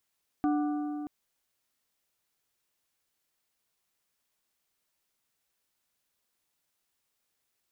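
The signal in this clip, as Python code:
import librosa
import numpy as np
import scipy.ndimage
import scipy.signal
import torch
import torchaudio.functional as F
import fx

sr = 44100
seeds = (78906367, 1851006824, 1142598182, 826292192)

y = fx.strike_metal(sr, length_s=0.63, level_db=-23.5, body='plate', hz=296.0, decay_s=3.26, tilt_db=7.5, modes=4)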